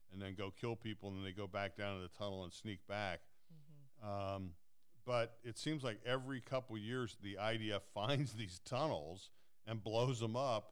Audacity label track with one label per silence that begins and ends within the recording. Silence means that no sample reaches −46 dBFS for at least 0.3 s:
3.160000	4.040000	silence
4.500000	5.080000	silence
9.190000	9.670000	silence